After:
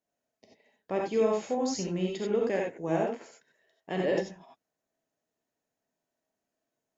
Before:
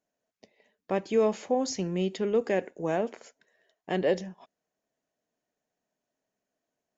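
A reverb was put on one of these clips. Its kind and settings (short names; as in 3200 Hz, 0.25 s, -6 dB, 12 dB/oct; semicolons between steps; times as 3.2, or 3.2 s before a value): non-linear reverb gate 0.11 s rising, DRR -1.5 dB; gain -4.5 dB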